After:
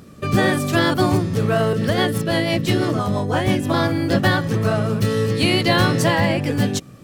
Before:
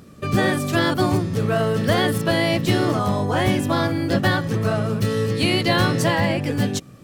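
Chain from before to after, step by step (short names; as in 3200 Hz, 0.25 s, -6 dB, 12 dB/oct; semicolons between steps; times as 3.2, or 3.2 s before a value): 1.73–3.74 rotary speaker horn 6 Hz; gain +2 dB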